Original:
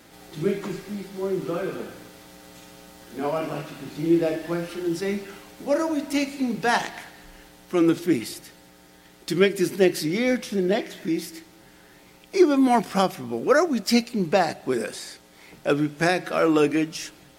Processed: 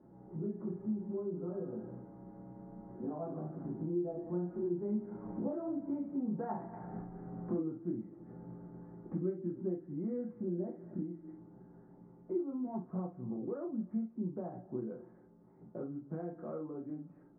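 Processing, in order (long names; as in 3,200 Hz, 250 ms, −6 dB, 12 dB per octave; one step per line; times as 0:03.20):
source passing by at 0:06.43, 14 m/s, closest 10 metres
Bessel low-pass filter 680 Hz, order 8
low-shelf EQ 120 Hz +8.5 dB
downward compressor 5 to 1, threshold −51 dBFS, peak gain reduction 26 dB
convolution reverb, pre-delay 3 ms, DRR −1 dB
level +7.5 dB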